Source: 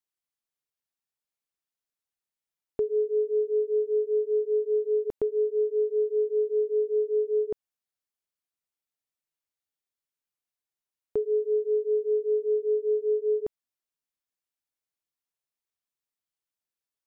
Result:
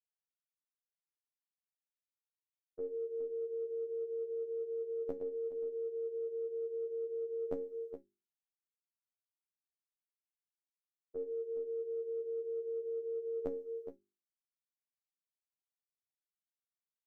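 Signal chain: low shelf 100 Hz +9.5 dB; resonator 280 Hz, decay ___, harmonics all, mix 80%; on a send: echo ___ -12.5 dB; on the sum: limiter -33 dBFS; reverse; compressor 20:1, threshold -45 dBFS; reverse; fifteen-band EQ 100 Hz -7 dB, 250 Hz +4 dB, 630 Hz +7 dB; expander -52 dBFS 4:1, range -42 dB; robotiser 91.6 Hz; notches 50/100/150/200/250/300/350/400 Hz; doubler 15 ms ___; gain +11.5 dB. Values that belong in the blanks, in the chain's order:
0.35 s, 0.418 s, -9 dB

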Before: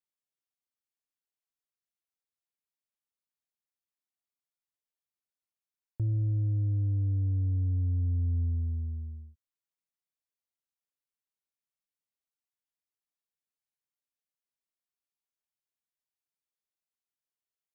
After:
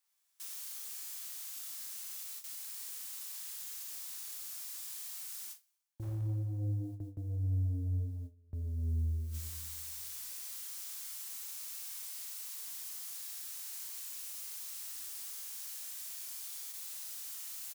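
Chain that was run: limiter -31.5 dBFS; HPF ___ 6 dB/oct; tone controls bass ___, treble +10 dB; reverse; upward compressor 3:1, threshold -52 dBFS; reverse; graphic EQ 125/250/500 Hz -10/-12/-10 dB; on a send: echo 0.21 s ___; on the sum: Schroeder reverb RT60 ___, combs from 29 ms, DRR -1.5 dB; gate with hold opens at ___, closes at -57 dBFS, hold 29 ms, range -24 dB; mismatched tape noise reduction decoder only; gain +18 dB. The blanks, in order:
96 Hz, -12 dB, -13.5 dB, 1.5 s, -51 dBFS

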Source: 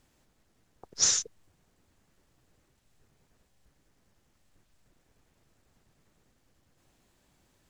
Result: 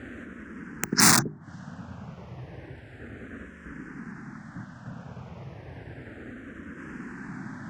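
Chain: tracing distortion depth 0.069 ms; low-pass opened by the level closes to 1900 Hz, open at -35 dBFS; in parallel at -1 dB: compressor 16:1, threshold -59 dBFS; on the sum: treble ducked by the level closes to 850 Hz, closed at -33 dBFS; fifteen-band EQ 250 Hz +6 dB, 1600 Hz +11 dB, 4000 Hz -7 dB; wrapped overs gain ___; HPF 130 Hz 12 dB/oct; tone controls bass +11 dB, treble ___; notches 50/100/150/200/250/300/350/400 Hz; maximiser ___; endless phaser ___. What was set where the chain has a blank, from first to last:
29 dB, +8 dB, +22 dB, -0.32 Hz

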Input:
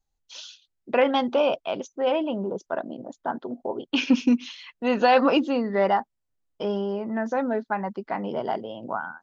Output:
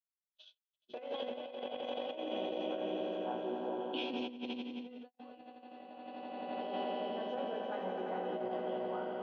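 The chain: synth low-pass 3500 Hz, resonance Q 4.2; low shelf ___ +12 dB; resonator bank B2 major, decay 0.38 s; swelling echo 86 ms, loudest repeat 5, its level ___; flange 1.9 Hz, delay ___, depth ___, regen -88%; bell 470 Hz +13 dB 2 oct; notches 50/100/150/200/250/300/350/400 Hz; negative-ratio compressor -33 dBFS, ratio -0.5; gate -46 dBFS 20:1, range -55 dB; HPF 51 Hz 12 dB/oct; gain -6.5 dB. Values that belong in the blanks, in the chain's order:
65 Hz, -6.5 dB, 4.2 ms, 7.1 ms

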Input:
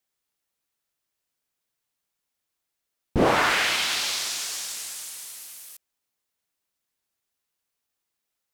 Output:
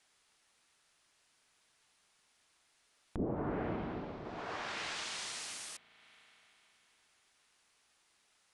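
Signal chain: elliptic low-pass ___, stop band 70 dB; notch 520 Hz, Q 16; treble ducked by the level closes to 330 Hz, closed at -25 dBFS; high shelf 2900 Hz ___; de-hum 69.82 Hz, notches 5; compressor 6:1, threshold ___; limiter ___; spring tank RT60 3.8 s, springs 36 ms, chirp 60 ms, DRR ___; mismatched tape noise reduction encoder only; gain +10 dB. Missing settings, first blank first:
10000 Hz, -9.5 dB, -41 dBFS, -36 dBFS, 17.5 dB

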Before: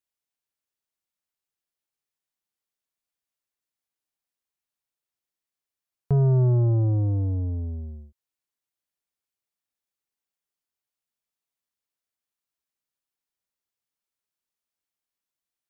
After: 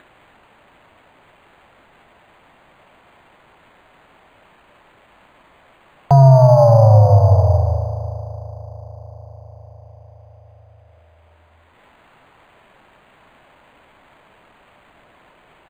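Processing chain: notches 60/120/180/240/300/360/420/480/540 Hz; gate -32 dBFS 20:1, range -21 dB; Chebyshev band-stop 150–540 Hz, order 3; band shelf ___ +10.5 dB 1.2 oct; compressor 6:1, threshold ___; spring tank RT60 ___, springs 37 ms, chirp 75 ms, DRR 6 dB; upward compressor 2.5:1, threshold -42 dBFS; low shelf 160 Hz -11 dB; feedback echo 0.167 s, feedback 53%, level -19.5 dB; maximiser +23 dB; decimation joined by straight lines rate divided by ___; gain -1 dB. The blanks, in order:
750 Hz, -22 dBFS, 3.6 s, 8×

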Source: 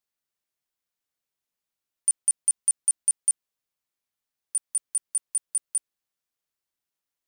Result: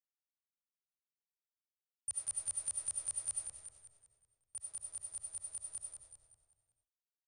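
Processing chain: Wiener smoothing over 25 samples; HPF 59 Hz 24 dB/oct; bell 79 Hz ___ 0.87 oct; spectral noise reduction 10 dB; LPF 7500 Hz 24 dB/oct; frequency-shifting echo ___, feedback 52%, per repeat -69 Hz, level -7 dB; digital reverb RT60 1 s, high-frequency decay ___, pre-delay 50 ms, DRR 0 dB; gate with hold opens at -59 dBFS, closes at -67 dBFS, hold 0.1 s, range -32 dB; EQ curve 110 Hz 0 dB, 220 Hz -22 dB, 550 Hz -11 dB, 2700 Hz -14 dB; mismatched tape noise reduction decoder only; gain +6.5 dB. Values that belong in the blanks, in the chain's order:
+4 dB, 0.188 s, 0.3×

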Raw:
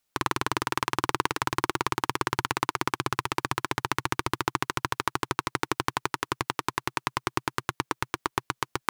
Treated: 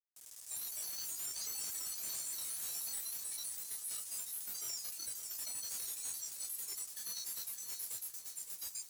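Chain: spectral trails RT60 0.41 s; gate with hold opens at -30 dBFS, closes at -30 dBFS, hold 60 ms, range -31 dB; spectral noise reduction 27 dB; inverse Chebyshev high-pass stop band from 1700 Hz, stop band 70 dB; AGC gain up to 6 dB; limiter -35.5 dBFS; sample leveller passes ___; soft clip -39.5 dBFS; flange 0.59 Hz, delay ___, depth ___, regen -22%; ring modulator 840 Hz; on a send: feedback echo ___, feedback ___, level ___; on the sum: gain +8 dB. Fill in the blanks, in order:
5, 5.1 ms, 9.7 ms, 0.564 s, 42%, -9 dB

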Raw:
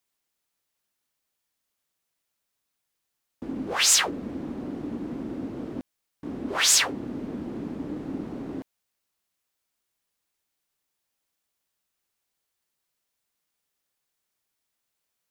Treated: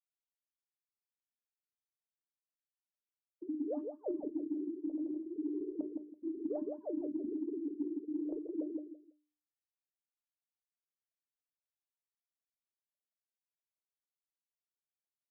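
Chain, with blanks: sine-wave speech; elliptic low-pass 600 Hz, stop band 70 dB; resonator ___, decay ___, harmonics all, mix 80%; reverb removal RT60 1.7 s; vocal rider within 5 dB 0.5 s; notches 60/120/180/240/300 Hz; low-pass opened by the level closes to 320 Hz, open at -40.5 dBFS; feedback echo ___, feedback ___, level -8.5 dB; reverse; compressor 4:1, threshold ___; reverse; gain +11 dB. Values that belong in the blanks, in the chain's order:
300 Hz, 0.42 s, 0.166 s, 21%, -47 dBFS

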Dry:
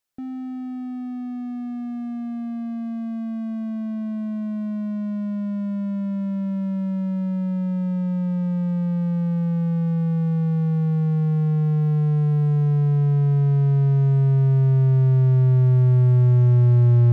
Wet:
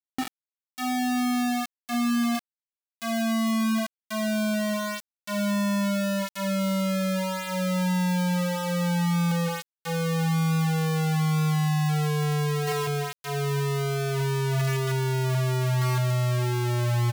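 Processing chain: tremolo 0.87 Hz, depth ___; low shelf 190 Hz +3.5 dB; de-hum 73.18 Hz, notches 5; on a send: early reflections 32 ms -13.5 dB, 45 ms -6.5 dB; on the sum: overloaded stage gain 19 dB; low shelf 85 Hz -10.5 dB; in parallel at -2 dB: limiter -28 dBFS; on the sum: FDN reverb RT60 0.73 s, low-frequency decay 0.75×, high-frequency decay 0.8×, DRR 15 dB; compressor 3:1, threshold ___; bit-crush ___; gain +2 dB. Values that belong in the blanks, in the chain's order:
81%, -29 dBFS, 5-bit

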